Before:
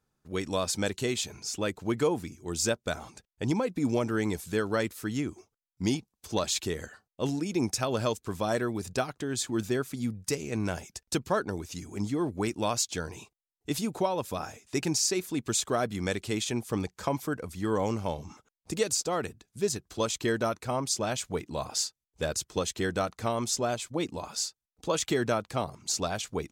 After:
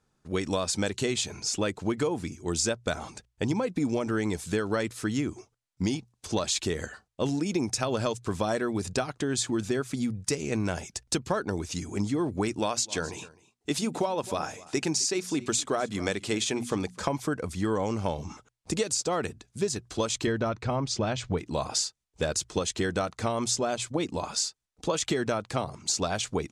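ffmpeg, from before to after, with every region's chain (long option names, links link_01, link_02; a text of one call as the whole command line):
ffmpeg -i in.wav -filter_complex "[0:a]asettb=1/sr,asplit=3[link_01][link_02][link_03];[link_01]atrim=end=12.594[link_04];[link_02]atrim=start=12.59:end=17.01,asetpts=PTS-STARTPTS,afade=type=in:duration=0.004:curve=qsin,afade=type=out:start_time=4.416:duration=0.004:curve=qsin,lowshelf=frequency=98:gain=-10.5,bandreject=frequency=60:width_type=h:width=6,bandreject=frequency=120:width_type=h:width=6,bandreject=frequency=180:width_type=h:width=6,bandreject=frequency=240:width_type=h:width=6,aecho=1:1:258:0.0841,atrim=end_sample=194922[link_05];[link_03]atrim=start=17.006[link_06];[link_04][link_05]acrossfade=duration=0.004:curve1=hsin:curve2=qsin[link_07];[link_07][link_06]acrossfade=duration=0.004:curve1=qsin:curve2=hsin,asettb=1/sr,asplit=3[link_08][link_09][link_10];[link_08]atrim=end=20.274[link_11];[link_09]atrim=start=20.27:end=21.38,asetpts=PTS-STARTPTS,afade=type=in:duration=0.004:curve=qsin,afade=type=out:start_time=1.106:duration=0.004:curve=qsin,lowpass=4400,lowshelf=frequency=150:gain=10.5[link_12];[link_10]atrim=start=21.376[link_13];[link_11][link_12]acrossfade=duration=0.004:curve1=hsin:curve2=qsin[link_14];[link_14][link_13]acrossfade=duration=0.004:curve1=qsin:curve2=hsin,acompressor=threshold=-30dB:ratio=6,lowpass=frequency=10000:width=0.5412,lowpass=frequency=10000:width=1.3066,bandreject=frequency=60:width_type=h:width=6,bandreject=frequency=120:width_type=h:width=6,volume=6dB" out.wav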